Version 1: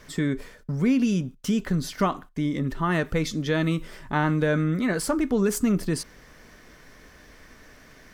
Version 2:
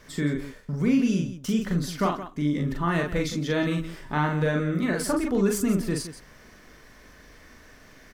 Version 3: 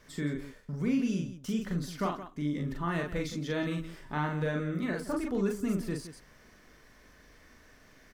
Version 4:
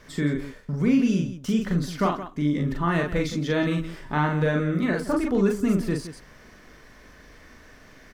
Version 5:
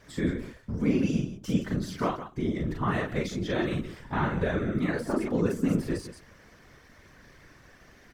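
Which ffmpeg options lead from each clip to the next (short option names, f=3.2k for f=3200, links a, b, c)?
-af "aecho=1:1:40.82|169.1:0.708|0.251,volume=-2.5dB"
-af "deesser=0.75,volume=-7dB"
-af "highshelf=f=6.2k:g=-5.5,volume=8.5dB"
-af "afftfilt=real='hypot(re,im)*cos(2*PI*random(0))':imag='hypot(re,im)*sin(2*PI*random(1))':win_size=512:overlap=0.75,volume=1.5dB"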